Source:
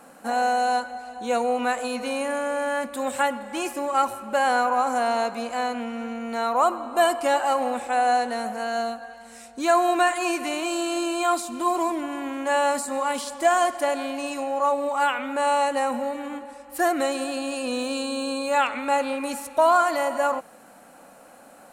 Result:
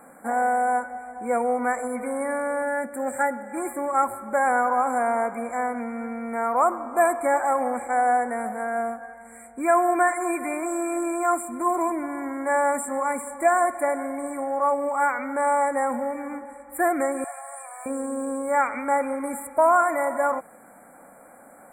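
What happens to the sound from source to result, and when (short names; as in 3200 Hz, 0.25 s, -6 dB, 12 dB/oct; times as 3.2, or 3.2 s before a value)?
2.62–3.57 notch comb 1100 Hz
17.24–17.86 steep high-pass 610 Hz 96 dB/oct
whole clip: FFT band-reject 2400–7200 Hz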